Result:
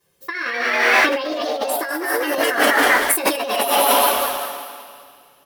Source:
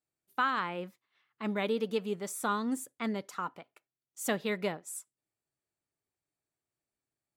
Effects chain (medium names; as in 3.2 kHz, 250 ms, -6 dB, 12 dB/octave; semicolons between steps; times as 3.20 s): two-slope reverb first 0.21 s, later 3.3 s, from -18 dB, DRR -9.5 dB; in parallel at -5.5 dB: bit crusher 7-bit; on the sum: comb 2.5 ms, depth 46%; on a send: frequency-shifting echo 263 ms, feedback 44%, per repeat +110 Hz, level -5.5 dB; on the sum: speed mistake 33 rpm record played at 45 rpm; compressor with a negative ratio -29 dBFS, ratio -1; trim +9 dB